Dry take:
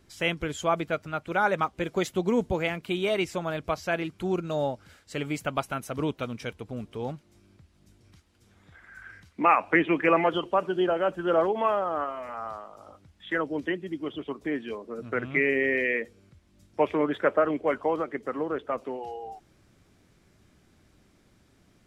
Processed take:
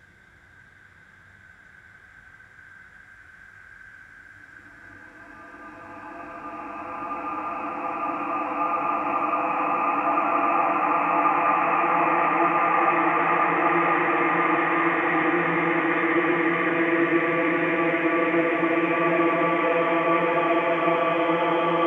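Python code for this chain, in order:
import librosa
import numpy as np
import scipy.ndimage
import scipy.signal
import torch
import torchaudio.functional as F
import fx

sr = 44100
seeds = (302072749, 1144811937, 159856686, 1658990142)

y = fx.paulstretch(x, sr, seeds[0], factor=14.0, window_s=1.0, from_s=8.67)
y = fx.echo_stepped(y, sr, ms=199, hz=860.0, octaves=0.7, feedback_pct=70, wet_db=-3.0)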